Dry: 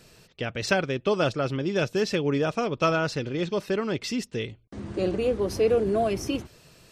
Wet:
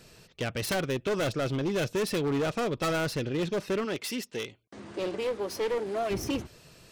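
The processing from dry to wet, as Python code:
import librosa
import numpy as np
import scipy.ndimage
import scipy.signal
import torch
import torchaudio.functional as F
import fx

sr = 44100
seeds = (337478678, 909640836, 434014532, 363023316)

y = fx.self_delay(x, sr, depth_ms=0.28)
y = fx.highpass(y, sr, hz=fx.line((3.84, 370.0), (6.09, 970.0)), slope=6, at=(3.84, 6.09), fade=0.02)
y = np.clip(y, -10.0 ** (-24.5 / 20.0), 10.0 ** (-24.5 / 20.0))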